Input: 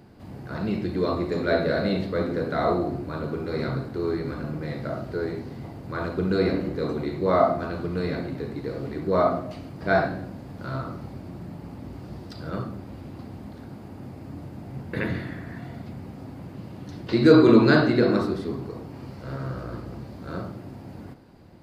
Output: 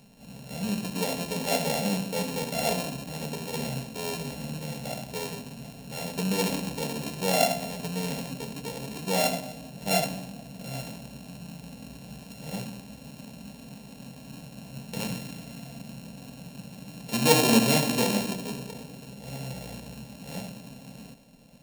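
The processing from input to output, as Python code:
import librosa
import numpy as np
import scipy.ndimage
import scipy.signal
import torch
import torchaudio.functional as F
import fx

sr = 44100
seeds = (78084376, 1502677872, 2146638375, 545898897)

y = np.r_[np.sort(x[:len(x) // 32 * 32].reshape(-1, 32), axis=1).ravel(), x[len(x) // 32 * 32:]]
y = fx.fixed_phaser(y, sr, hz=340.0, stages=6)
y = fx.echo_bbd(y, sr, ms=214, stages=1024, feedback_pct=72, wet_db=-20.5)
y = F.gain(torch.from_numpy(y), -1.0).numpy()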